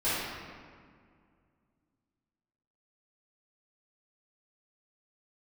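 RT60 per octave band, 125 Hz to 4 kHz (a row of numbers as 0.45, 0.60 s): 2.9, 2.8, 2.1, 2.0, 1.7, 1.2 s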